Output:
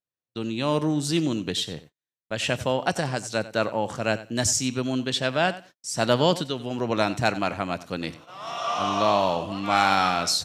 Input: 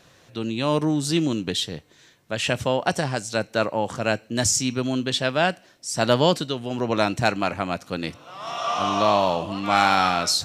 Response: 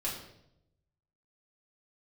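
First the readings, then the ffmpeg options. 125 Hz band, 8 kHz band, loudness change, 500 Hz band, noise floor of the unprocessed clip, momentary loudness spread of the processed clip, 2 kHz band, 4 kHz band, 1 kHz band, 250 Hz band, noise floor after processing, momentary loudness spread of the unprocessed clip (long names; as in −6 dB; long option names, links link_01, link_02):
−2.0 dB, −2.0 dB, −2.0 dB, −2.0 dB, −55 dBFS, 11 LU, −2.0 dB, −2.0 dB, −2.0 dB, −2.0 dB, below −85 dBFS, 11 LU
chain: -af "aecho=1:1:92|184:0.15|0.0224,agate=range=-43dB:threshold=-43dB:ratio=16:detection=peak,volume=-2dB"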